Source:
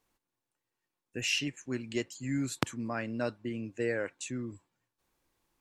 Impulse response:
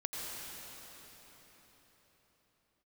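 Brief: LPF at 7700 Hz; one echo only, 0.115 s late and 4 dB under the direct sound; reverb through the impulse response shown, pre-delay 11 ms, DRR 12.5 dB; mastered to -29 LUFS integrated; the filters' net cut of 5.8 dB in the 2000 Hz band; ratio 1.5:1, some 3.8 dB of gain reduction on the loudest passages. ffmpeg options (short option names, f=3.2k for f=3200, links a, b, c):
-filter_complex "[0:a]lowpass=7.7k,equalizer=f=2k:t=o:g=-8.5,acompressor=threshold=-37dB:ratio=1.5,aecho=1:1:115:0.631,asplit=2[a][b];[1:a]atrim=start_sample=2205,adelay=11[c];[b][c]afir=irnorm=-1:irlink=0,volume=-15dB[d];[a][d]amix=inputs=2:normalize=0,volume=8dB"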